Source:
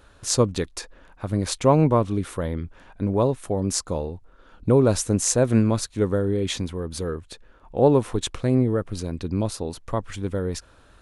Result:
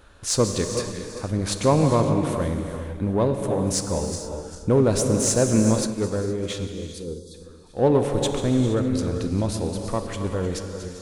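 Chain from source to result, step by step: backward echo that repeats 198 ms, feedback 56%, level -11.5 dB; 6.72–7.34 s: spectral selection erased 540–3300 Hz; in parallel at -4.5 dB: saturation -22.5 dBFS, distortion -6 dB; on the sum: gated-style reverb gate 500 ms flat, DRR 5.5 dB; 5.87–7.88 s: upward expansion 1.5:1, over -29 dBFS; trim -3 dB

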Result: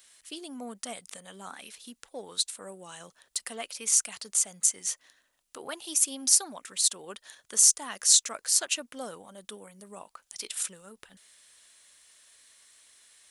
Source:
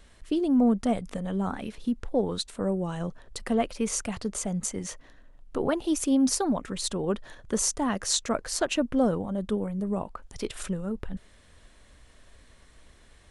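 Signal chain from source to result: differentiator; trim +8.5 dB

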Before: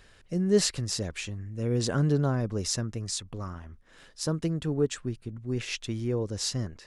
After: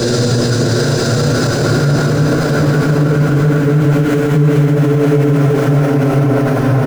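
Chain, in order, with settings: low-pass 3.1 kHz 6 dB/octave; compression 4:1, threshold -42 dBFS, peak gain reduction 20.5 dB; in parallel at -8 dB: integer overflow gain 32.5 dB; on the sum: Paulstretch 14×, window 0.50 s, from 1.82 s; delay 991 ms -5.5 dB; loudness maximiser +36 dB; three bands expanded up and down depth 70%; trim -3.5 dB

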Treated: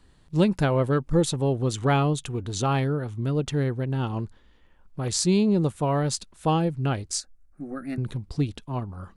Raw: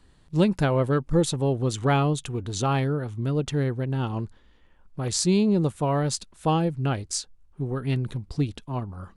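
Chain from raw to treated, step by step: 7.20–7.98 s: static phaser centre 640 Hz, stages 8

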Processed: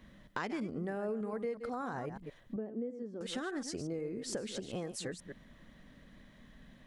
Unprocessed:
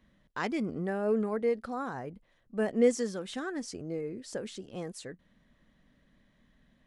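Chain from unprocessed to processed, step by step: chunks repeated in reverse 121 ms, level -11.5 dB; compression 5:1, threshold -45 dBFS, peak gain reduction 23 dB; 2.56–3.21 s: band-pass filter 300 Hz, Q 1.3; trim +8.5 dB

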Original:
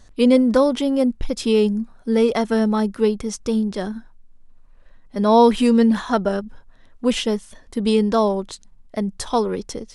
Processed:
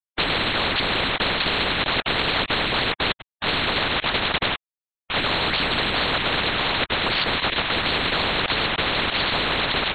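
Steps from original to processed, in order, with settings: on a send: repeats whose band climbs or falls 659 ms, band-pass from 410 Hz, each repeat 1.4 oct, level -5 dB; on the sum: harmonic-percussive split percussive +6 dB; peak limiter -11 dBFS, peak gain reduction 9 dB; 2.92–3.44 s: level held to a coarse grid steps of 21 dB; bit crusher 5-bit; LPC vocoder at 8 kHz whisper; spectrum-flattening compressor 10:1; trim -2.5 dB

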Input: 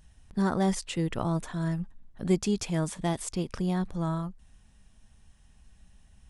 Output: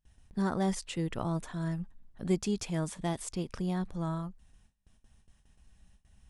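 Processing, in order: gate with hold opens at -47 dBFS; trim -4 dB

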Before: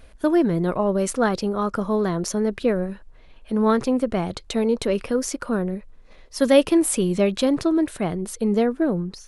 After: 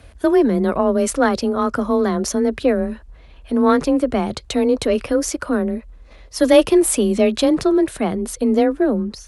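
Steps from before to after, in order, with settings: Chebyshev shaper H 2 -19 dB, 5 -32 dB, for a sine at -3.5 dBFS; frequency shift +24 Hz; trim +3.5 dB

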